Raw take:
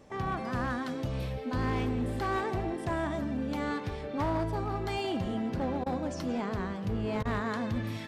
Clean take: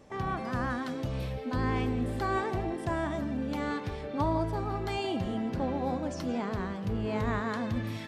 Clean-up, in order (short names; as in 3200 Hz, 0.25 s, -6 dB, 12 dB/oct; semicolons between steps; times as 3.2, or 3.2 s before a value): clip repair -25.5 dBFS; interpolate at 5.84/7.23, 21 ms